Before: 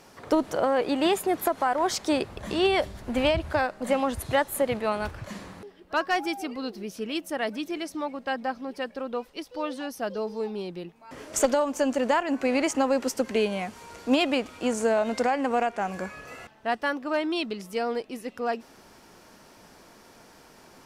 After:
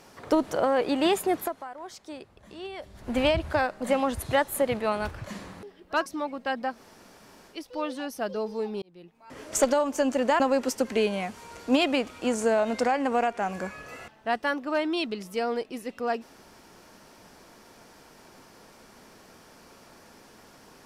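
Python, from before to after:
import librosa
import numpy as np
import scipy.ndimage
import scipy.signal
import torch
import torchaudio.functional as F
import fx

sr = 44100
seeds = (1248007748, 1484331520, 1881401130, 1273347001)

y = fx.edit(x, sr, fx.fade_down_up(start_s=1.35, length_s=1.76, db=-16.0, fade_s=0.37, curve='qua'),
    fx.cut(start_s=6.06, length_s=1.81),
    fx.room_tone_fill(start_s=8.55, length_s=0.8, crossfade_s=0.16),
    fx.fade_in_span(start_s=10.63, length_s=0.64),
    fx.cut(start_s=12.21, length_s=0.58), tone=tone)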